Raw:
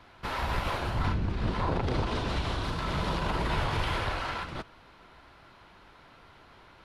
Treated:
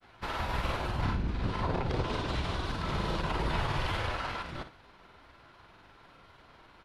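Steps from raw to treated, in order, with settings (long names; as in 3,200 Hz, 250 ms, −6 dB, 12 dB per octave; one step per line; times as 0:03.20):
granular cloud, spray 29 ms, pitch spread up and down by 0 semitones
on a send: flutter between parallel walls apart 10 metres, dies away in 0.31 s
on the sum: level −1 dB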